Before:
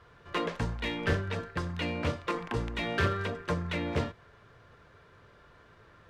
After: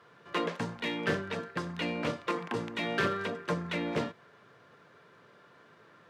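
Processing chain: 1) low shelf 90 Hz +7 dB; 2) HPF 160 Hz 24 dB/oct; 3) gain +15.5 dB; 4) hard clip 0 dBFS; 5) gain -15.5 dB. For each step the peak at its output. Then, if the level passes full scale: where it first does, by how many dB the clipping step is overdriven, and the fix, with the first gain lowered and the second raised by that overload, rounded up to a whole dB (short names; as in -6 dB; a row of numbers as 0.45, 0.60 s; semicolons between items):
-13.0, -17.5, -2.0, -2.0, -17.5 dBFS; no overload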